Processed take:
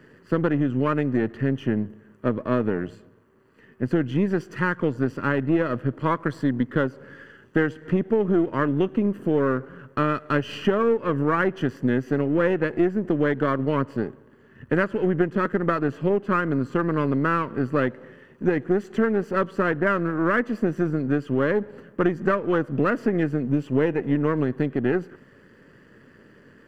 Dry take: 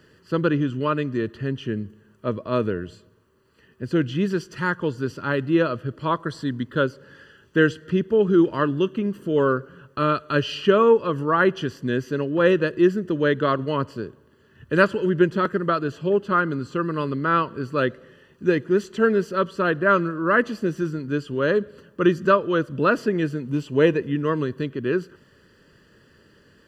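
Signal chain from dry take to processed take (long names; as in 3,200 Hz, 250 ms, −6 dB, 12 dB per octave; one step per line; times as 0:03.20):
gain on one half-wave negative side −7 dB
octave-band graphic EQ 125/250/500/1,000/2,000/4,000 Hz +6/+10/+6/+5/+9/−5 dB
downward compressor, threshold −15 dBFS, peak gain reduction 11.5 dB
level −2.5 dB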